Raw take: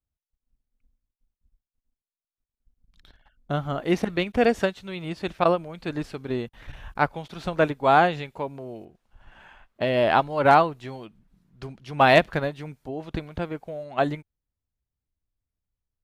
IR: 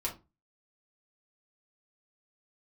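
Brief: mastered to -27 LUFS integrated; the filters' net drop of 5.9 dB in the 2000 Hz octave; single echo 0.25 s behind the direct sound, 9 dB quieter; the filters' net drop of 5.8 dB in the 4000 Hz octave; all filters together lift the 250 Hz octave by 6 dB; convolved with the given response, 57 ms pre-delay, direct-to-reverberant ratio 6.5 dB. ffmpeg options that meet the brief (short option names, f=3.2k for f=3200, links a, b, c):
-filter_complex "[0:a]equalizer=f=250:t=o:g=8,equalizer=f=2k:t=o:g=-7.5,equalizer=f=4k:t=o:g=-4.5,aecho=1:1:250:0.355,asplit=2[a][b];[1:a]atrim=start_sample=2205,adelay=57[c];[b][c]afir=irnorm=-1:irlink=0,volume=-9.5dB[d];[a][d]amix=inputs=2:normalize=0,volume=-5dB"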